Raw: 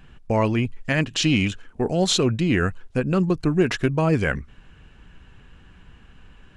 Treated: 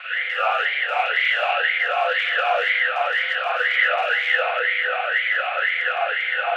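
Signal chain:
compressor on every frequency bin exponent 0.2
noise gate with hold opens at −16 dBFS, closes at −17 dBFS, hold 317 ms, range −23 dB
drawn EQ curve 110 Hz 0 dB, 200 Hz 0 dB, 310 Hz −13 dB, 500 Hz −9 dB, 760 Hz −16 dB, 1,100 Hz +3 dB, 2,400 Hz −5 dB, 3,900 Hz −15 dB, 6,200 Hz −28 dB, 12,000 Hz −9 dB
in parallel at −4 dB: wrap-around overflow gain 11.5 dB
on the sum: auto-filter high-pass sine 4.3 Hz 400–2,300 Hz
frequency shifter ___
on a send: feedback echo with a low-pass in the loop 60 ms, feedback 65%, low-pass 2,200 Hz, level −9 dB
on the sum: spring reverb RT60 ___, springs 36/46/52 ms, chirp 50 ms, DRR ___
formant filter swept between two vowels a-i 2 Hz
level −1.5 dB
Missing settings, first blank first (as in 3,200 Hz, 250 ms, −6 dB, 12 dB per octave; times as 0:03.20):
+330 Hz, 1.7 s, −9.5 dB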